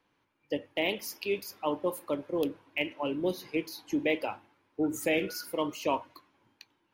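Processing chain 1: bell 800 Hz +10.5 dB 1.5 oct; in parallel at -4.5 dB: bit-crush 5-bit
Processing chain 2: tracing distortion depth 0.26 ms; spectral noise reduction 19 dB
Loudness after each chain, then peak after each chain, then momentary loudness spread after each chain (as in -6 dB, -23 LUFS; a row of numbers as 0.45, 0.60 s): -23.5, -32.5 LUFS; -4.0, -14.5 dBFS; 8, 7 LU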